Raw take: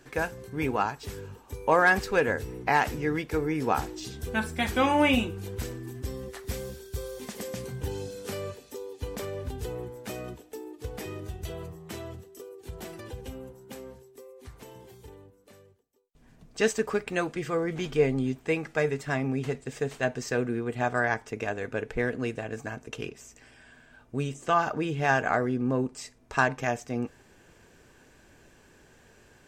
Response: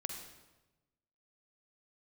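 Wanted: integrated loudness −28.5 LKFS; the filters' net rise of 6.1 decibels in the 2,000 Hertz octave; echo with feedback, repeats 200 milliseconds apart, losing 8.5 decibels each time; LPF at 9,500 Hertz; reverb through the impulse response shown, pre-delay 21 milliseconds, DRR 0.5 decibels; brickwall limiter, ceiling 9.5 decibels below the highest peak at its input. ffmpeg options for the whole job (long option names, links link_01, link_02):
-filter_complex "[0:a]lowpass=9500,equalizer=frequency=2000:width_type=o:gain=8,alimiter=limit=-13.5dB:level=0:latency=1,aecho=1:1:200|400|600|800:0.376|0.143|0.0543|0.0206,asplit=2[link_01][link_02];[1:a]atrim=start_sample=2205,adelay=21[link_03];[link_02][link_03]afir=irnorm=-1:irlink=0,volume=0dB[link_04];[link_01][link_04]amix=inputs=2:normalize=0,volume=-2.5dB"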